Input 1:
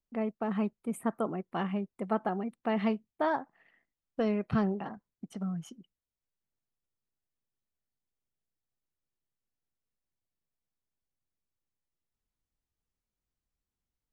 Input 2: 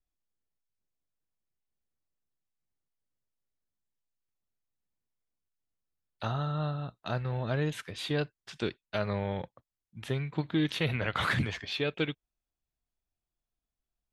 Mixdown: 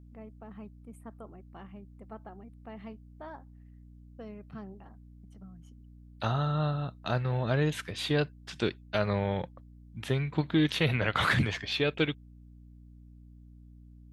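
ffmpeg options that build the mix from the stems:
ffmpeg -i stem1.wav -i stem2.wav -filter_complex "[0:a]volume=-15.5dB[link_01];[1:a]aeval=exprs='val(0)+0.000708*(sin(2*PI*60*n/s)+sin(2*PI*2*60*n/s)/2+sin(2*PI*3*60*n/s)/3+sin(2*PI*4*60*n/s)/4+sin(2*PI*5*60*n/s)/5)':channel_layout=same,volume=3dB[link_02];[link_01][link_02]amix=inputs=2:normalize=0,aeval=exprs='val(0)+0.002*(sin(2*PI*60*n/s)+sin(2*PI*2*60*n/s)/2+sin(2*PI*3*60*n/s)/3+sin(2*PI*4*60*n/s)/4+sin(2*PI*5*60*n/s)/5)':channel_layout=same" out.wav

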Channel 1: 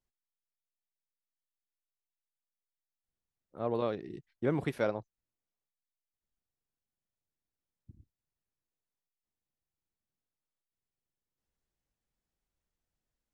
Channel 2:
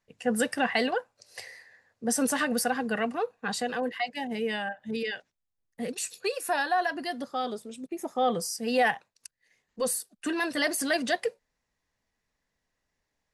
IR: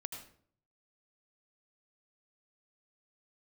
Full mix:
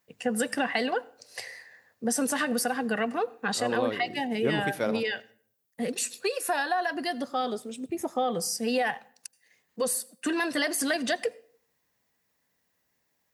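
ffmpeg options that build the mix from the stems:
-filter_complex "[0:a]aemphasis=mode=production:type=50fm,volume=-0.5dB,asplit=2[link_01][link_02];[link_02]volume=-6.5dB[link_03];[1:a]acompressor=threshold=-27dB:ratio=6,volume=2.5dB,asplit=2[link_04][link_05];[link_05]volume=-15dB[link_06];[2:a]atrim=start_sample=2205[link_07];[link_03][link_06]amix=inputs=2:normalize=0[link_08];[link_08][link_07]afir=irnorm=-1:irlink=0[link_09];[link_01][link_04][link_09]amix=inputs=3:normalize=0,highpass=110"

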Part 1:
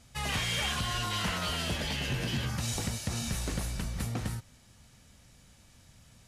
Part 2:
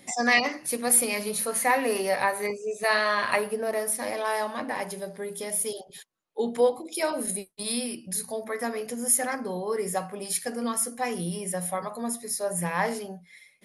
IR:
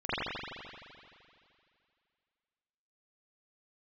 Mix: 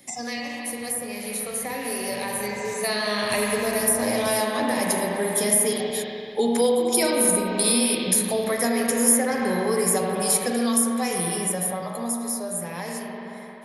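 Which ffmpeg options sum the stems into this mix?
-filter_complex "[0:a]highpass=96,volume=-15.5dB,asplit=3[link_01][link_02][link_03];[link_01]atrim=end=2.74,asetpts=PTS-STARTPTS,afade=type=out:start_time=2.736:duration=0.004:curve=hsin[link_04];[link_02]atrim=start=2.74:end=3.3,asetpts=PTS-STARTPTS,volume=0[link_05];[link_03]atrim=start=3.3,asetpts=PTS-STARTPTS,afade=type=in:duration=0.004:curve=hsin[link_06];[link_04][link_05][link_06]concat=n=3:v=0:a=1[link_07];[1:a]volume=-3dB,asplit=3[link_08][link_09][link_10];[link_09]volume=-9.5dB[link_11];[link_10]apad=whole_len=276789[link_12];[link_07][link_12]sidechaingate=range=-33dB:threshold=-38dB:ratio=16:detection=peak[link_13];[2:a]atrim=start_sample=2205[link_14];[link_11][link_14]afir=irnorm=-1:irlink=0[link_15];[link_13][link_08][link_15]amix=inputs=3:normalize=0,acrossover=split=320|730|2800[link_16][link_17][link_18][link_19];[link_16]acompressor=threshold=-37dB:ratio=4[link_20];[link_17]acompressor=threshold=-39dB:ratio=4[link_21];[link_18]acompressor=threshold=-45dB:ratio=4[link_22];[link_19]acompressor=threshold=-36dB:ratio=4[link_23];[link_20][link_21][link_22][link_23]amix=inputs=4:normalize=0,highshelf=frequency=7000:gain=8,dynaudnorm=framelen=650:gausssize=9:maxgain=12dB"

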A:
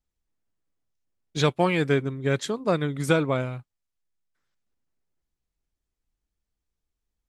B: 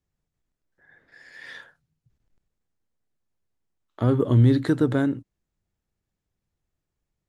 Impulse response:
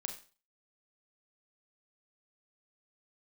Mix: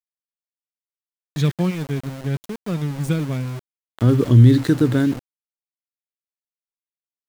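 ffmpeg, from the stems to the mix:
-filter_complex "[0:a]equalizer=frequency=150:width_type=o:width=2.2:gain=11.5,volume=-8dB[link_01];[1:a]volume=-5dB,asplit=2[link_02][link_03];[link_03]apad=whole_len=321141[link_04];[link_01][link_04]sidechaingate=range=-8dB:threshold=-55dB:ratio=16:detection=peak[link_05];[link_05][link_02]amix=inputs=2:normalize=0,equalizer=frequency=780:width=0.72:gain=-9.5,dynaudnorm=framelen=330:gausssize=11:maxgain=16dB,aeval=exprs='val(0)*gte(abs(val(0)),0.0335)':channel_layout=same"

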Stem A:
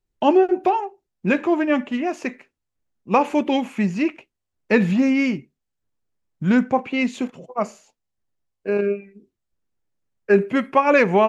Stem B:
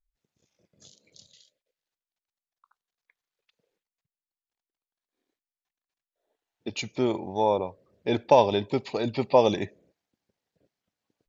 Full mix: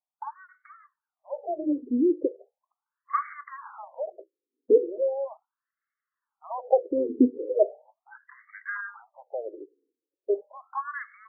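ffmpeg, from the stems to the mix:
ffmpeg -i stem1.wav -i stem2.wav -filter_complex "[0:a]lowpass=frequency=1700:poles=1,alimiter=limit=-15.5dB:level=0:latency=1:release=422,dynaudnorm=framelen=390:gausssize=11:maxgain=14.5dB,volume=-2.5dB[link_01];[1:a]equalizer=frequency=125:width_type=o:width=1:gain=-11,equalizer=frequency=250:width_type=o:width=1:gain=-8,equalizer=frequency=500:width_type=o:width=1:gain=-5,equalizer=frequency=1000:width_type=o:width=1:gain=-11,equalizer=frequency=2000:width_type=o:width=1:gain=10,equalizer=frequency=4000:width_type=o:width=1:gain=-7,acrossover=split=320|720|2000[link_02][link_03][link_04][link_05];[link_03]acompressor=threshold=-37dB:ratio=4[link_06];[link_04]acompressor=threshold=-36dB:ratio=4[link_07];[link_05]acompressor=threshold=-41dB:ratio=4[link_08];[link_02][link_06][link_07][link_08]amix=inputs=4:normalize=0,volume=0.5dB[link_09];[link_01][link_09]amix=inputs=2:normalize=0,afftfilt=real='re*between(b*sr/1024,350*pow(1600/350,0.5+0.5*sin(2*PI*0.38*pts/sr))/1.41,350*pow(1600/350,0.5+0.5*sin(2*PI*0.38*pts/sr))*1.41)':imag='im*between(b*sr/1024,350*pow(1600/350,0.5+0.5*sin(2*PI*0.38*pts/sr))/1.41,350*pow(1600/350,0.5+0.5*sin(2*PI*0.38*pts/sr))*1.41)':win_size=1024:overlap=0.75" out.wav

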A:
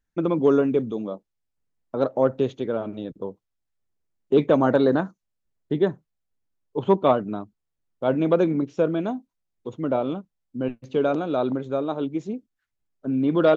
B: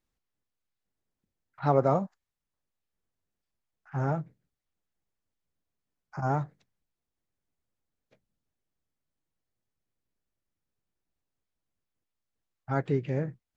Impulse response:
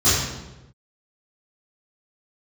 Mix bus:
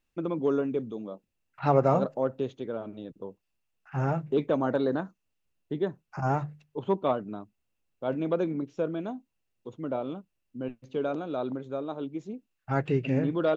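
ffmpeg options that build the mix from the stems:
-filter_complex "[0:a]volume=-8dB[link_01];[1:a]equalizer=frequency=2700:width=7.6:gain=14,bandreject=frequency=50:width_type=h:width=6,bandreject=frequency=100:width_type=h:width=6,bandreject=frequency=150:width_type=h:width=6,volume=1.5dB[link_02];[link_01][link_02]amix=inputs=2:normalize=0"

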